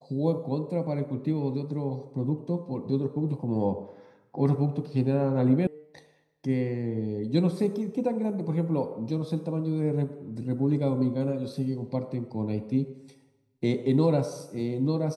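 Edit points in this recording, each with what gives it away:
5.67 sound cut off

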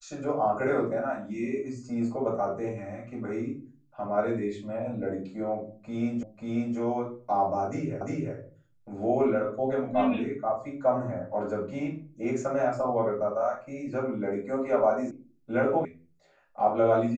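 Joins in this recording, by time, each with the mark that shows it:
6.23 repeat of the last 0.54 s
8.01 repeat of the last 0.35 s
15.11 sound cut off
15.85 sound cut off

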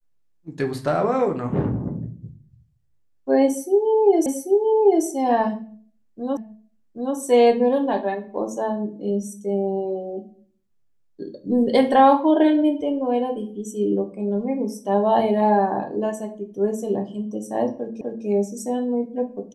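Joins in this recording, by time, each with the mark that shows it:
4.26 repeat of the last 0.79 s
6.37 repeat of the last 0.78 s
18.01 repeat of the last 0.25 s

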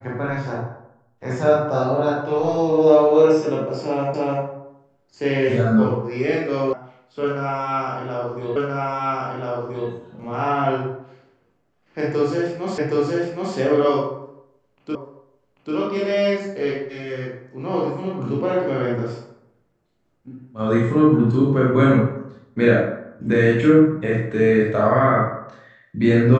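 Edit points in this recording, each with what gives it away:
4.14 repeat of the last 0.3 s
6.73 sound cut off
8.56 repeat of the last 1.33 s
12.78 repeat of the last 0.77 s
14.95 repeat of the last 0.79 s

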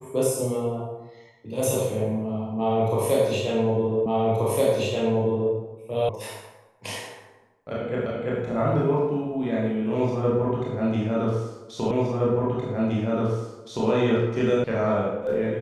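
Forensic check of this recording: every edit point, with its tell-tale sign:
4.06 repeat of the last 1.48 s
6.09 sound cut off
8.06 repeat of the last 0.34 s
11.91 repeat of the last 1.97 s
14.64 sound cut off

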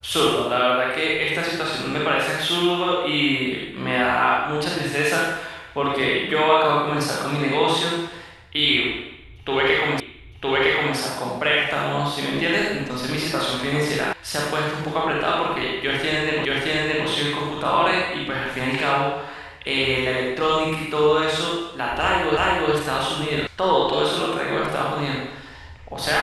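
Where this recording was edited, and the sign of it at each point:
10 repeat of the last 0.96 s
14.13 sound cut off
16.45 repeat of the last 0.62 s
22.37 repeat of the last 0.36 s
23.47 sound cut off

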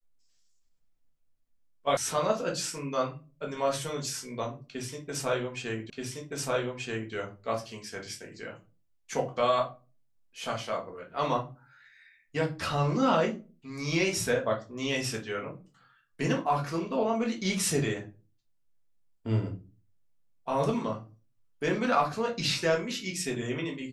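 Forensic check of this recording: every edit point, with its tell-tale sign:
1.97 sound cut off
5.9 repeat of the last 1.23 s

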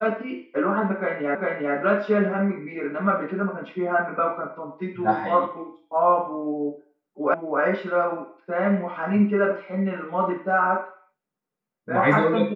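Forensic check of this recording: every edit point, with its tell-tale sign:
1.35 repeat of the last 0.4 s
7.34 sound cut off

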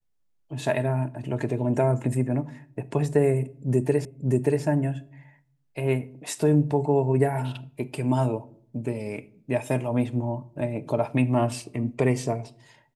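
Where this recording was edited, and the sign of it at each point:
4.05 repeat of the last 0.58 s

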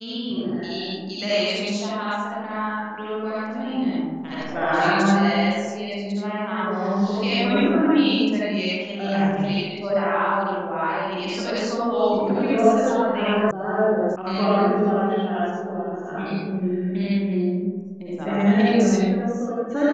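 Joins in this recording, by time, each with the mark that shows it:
13.51 sound cut off
14.16 sound cut off

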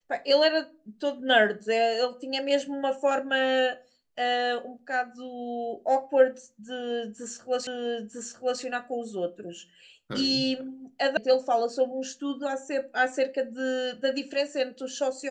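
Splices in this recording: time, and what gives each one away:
7.67 repeat of the last 0.95 s
11.17 sound cut off

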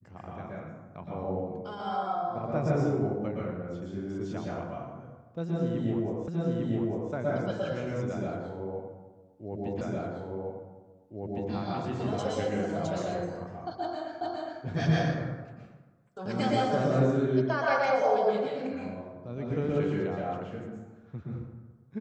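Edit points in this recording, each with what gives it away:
6.28 repeat of the last 0.85 s
9.81 repeat of the last 1.71 s
14.21 repeat of the last 0.41 s

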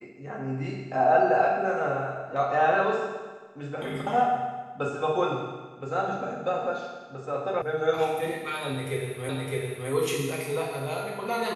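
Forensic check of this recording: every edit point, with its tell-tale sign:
7.62 sound cut off
9.29 repeat of the last 0.61 s

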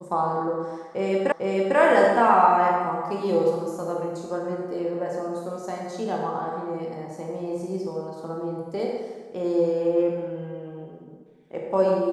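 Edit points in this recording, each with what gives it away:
1.32 repeat of the last 0.45 s

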